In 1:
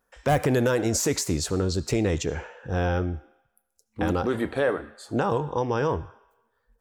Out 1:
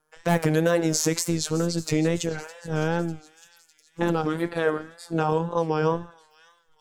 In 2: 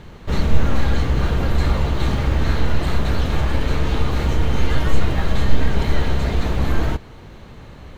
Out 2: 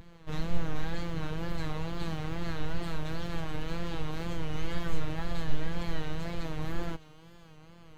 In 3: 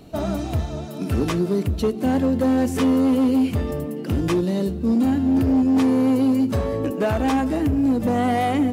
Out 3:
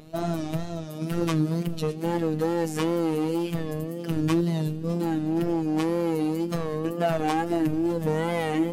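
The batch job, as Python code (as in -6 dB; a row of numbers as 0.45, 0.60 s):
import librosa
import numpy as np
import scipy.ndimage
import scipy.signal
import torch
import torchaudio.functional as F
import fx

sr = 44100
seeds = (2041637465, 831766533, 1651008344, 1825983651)

y = fx.robotise(x, sr, hz=163.0)
y = fx.echo_wet_highpass(y, sr, ms=605, feedback_pct=55, hz=2600.0, wet_db=-16)
y = fx.wow_flutter(y, sr, seeds[0], rate_hz=2.1, depth_cents=94.0)
y = y * 10.0 ** (-26 / 20.0) / np.sqrt(np.mean(np.square(y)))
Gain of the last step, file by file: +3.0, -10.5, -1.0 dB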